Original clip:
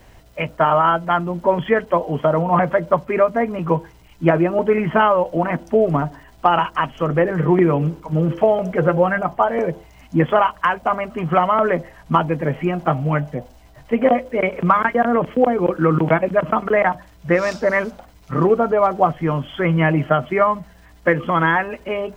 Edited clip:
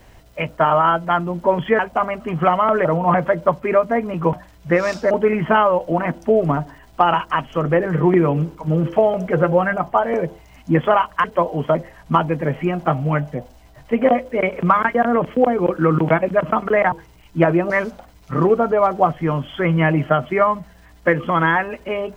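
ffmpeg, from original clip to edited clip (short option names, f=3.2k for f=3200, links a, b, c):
-filter_complex "[0:a]asplit=9[a][b][c][d][e][f][g][h][i];[a]atrim=end=1.792[j];[b]atrim=start=10.688:end=11.752[k];[c]atrim=start=2.298:end=3.782[l];[d]atrim=start=16.918:end=17.702[m];[e]atrim=start=4.558:end=10.692[n];[f]atrim=start=1.788:end=2.302[o];[g]atrim=start=11.748:end=16.922[p];[h]atrim=start=3.778:end=4.562[q];[i]atrim=start=17.698[r];[j][k]acrossfade=d=0.004:c1=hsin:c2=hsin[s];[s][l]acrossfade=d=0.004:c1=hsin:c2=hsin[t];[t][m]acrossfade=d=0.004:c1=hsin:c2=hsin[u];[u][n]acrossfade=d=0.004:c1=hsin:c2=hsin[v];[v][o]acrossfade=d=0.004:c1=hsin:c2=hsin[w];[w][p]acrossfade=d=0.004:c1=hsin:c2=hsin[x];[x][q]acrossfade=d=0.004:c1=hsin:c2=hsin[y];[y][r]acrossfade=d=0.004:c1=hsin:c2=hsin"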